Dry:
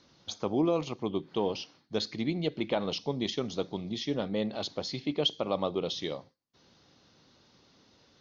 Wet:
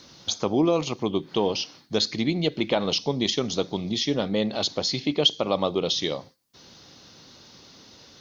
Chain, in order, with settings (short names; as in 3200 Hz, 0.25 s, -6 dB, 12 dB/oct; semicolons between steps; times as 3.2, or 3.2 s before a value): high shelf 4700 Hz +10.5 dB; in parallel at 0 dB: compressor, threshold -39 dBFS, peak gain reduction 18 dB; on the sum: gain +4 dB